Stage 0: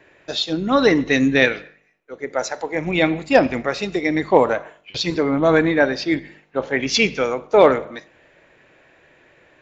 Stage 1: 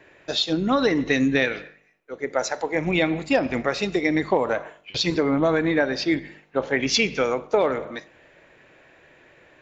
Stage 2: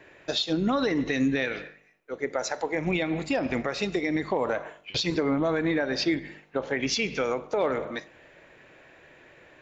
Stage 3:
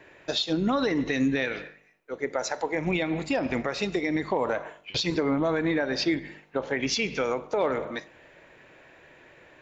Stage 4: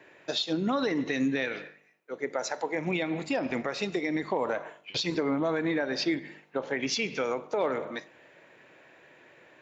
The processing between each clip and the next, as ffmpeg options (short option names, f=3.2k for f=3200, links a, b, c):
-af "acompressor=threshold=-16dB:ratio=12"
-af "alimiter=limit=-16dB:level=0:latency=1:release=179"
-af "equalizer=f=940:w=8:g=3"
-af "highpass=140,volume=-2.5dB"